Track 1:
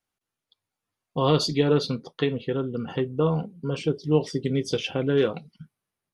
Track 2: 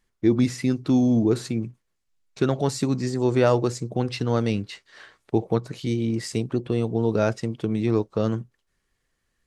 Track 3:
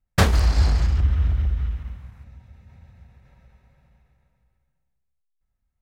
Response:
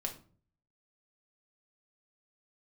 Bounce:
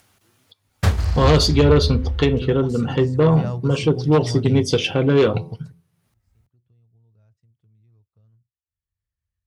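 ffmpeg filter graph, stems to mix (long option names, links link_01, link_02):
-filter_complex "[0:a]bandreject=frequency=85.41:width_type=h:width=4,bandreject=frequency=170.82:width_type=h:width=4,bandreject=frequency=256.23:width_type=h:width=4,bandreject=frequency=341.64:width_type=h:width=4,bandreject=frequency=427.05:width_type=h:width=4,bandreject=frequency=512.46:width_type=h:width=4,bandreject=frequency=597.87:width_type=h:width=4,bandreject=frequency=683.28:width_type=h:width=4,bandreject=frequency=768.69:width_type=h:width=4,bandreject=frequency=854.1:width_type=h:width=4,bandreject=frequency=939.51:width_type=h:width=4,bandreject=frequency=1024.92:width_type=h:width=4,bandreject=frequency=1110.33:width_type=h:width=4,aeval=exprs='0.398*sin(PI/2*2*val(0)/0.398)':channel_layout=same,volume=-2.5dB,asplit=3[link_01][link_02][link_03];[link_02]volume=-17.5dB[link_04];[1:a]asubboost=boost=9.5:cutoff=100,volume=-12.5dB[link_05];[2:a]adelay=650,volume=-5.5dB[link_06];[link_03]apad=whole_len=417624[link_07];[link_05][link_07]sidechaingate=range=-53dB:threshold=-40dB:ratio=16:detection=peak[link_08];[3:a]atrim=start_sample=2205[link_09];[link_04][link_09]afir=irnorm=-1:irlink=0[link_10];[link_01][link_08][link_06][link_10]amix=inputs=4:normalize=0,acompressor=mode=upward:threshold=-46dB:ratio=2.5,highpass=48,equalizer=frequency=91:width=2.1:gain=10.5"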